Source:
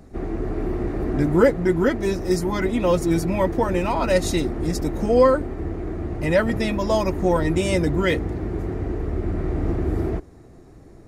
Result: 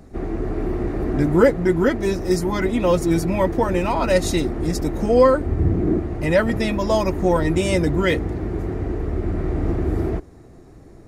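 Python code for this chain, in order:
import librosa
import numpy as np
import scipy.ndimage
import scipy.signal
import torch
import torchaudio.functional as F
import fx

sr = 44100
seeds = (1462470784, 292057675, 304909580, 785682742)

y = fx.peak_eq(x, sr, hz=fx.line((5.46, 70.0), (5.98, 280.0)), db=14.0, octaves=1.9, at=(5.46, 5.98), fade=0.02)
y = y * librosa.db_to_amplitude(1.5)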